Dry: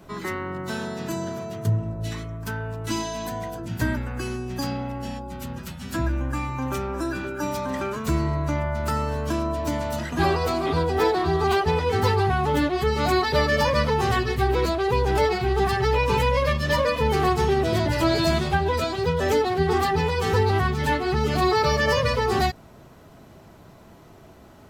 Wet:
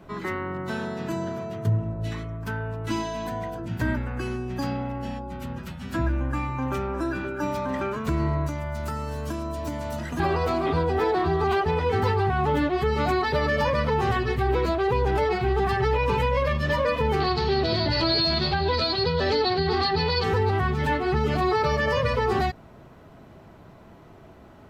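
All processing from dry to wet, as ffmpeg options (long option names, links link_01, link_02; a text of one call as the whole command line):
ffmpeg -i in.wav -filter_complex "[0:a]asettb=1/sr,asplit=3[link_01][link_02][link_03];[link_01]atrim=end=8.464[link_04];[link_02]atrim=start=8.46:end=10.2,asetpts=PTS-STARTPTS,afade=type=in:duration=0.004:curve=qsin,afade=type=out:start_time=1.736:duration=0.004:curve=qsin,bass=frequency=250:gain=2,treble=frequency=4000:gain=14,acrossover=split=2600|7900[link_05][link_06][link_07];[link_05]acompressor=threshold=-28dB:ratio=4[link_08];[link_06]acompressor=threshold=-44dB:ratio=4[link_09];[link_07]acompressor=threshold=-43dB:ratio=4[link_10];[link_08][link_09][link_10]amix=inputs=3:normalize=0[link_11];[link_03]atrim=start=10.196[link_12];[link_04][link_11]acrossfade=duration=0.004:curve1=hsin:curve2=qsin[link_13];[link_13][link_12]acrossfade=duration=0.004:curve1=qsin:curve2=hsin,asettb=1/sr,asplit=3[link_14][link_15][link_16];[link_14]atrim=end=17.204[link_17];[link_15]atrim=start=17.2:end=20.24,asetpts=PTS-STARTPTS,afade=type=in:duration=0.004:curve=qsin,afade=type=out:start_time=3.036:duration=0.004:curve=qsin,lowpass=frequency=4400:width_type=q:width=13,asoftclip=type=hard:threshold=-4dB[link_18];[link_16]atrim=start=20.236[link_19];[link_17][link_18]acrossfade=duration=0.004:curve1=hsin:curve2=qsin[link_20];[link_20][link_19]acrossfade=duration=0.004:curve1=qsin:curve2=hsin,bass=frequency=250:gain=0,treble=frequency=4000:gain=-10,alimiter=limit=-14.5dB:level=0:latency=1:release=67" out.wav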